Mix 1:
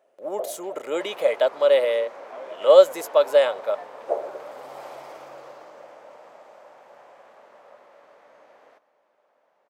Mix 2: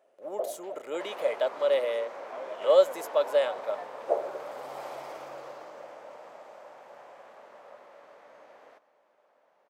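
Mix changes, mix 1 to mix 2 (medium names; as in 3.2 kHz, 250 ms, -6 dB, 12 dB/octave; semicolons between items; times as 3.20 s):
speech -7.5 dB; first sound: send -7.0 dB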